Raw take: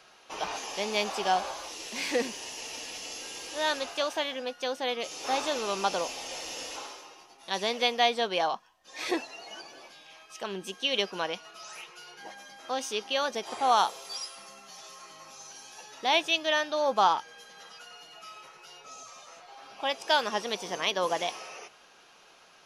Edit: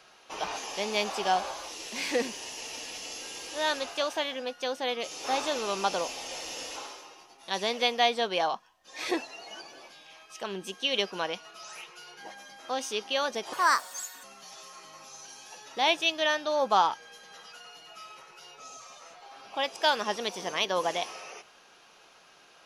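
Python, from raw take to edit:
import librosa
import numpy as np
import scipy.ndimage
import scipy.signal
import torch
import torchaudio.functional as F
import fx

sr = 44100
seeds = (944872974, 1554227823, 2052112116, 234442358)

y = fx.edit(x, sr, fx.speed_span(start_s=13.53, length_s=0.97, speed=1.37), tone=tone)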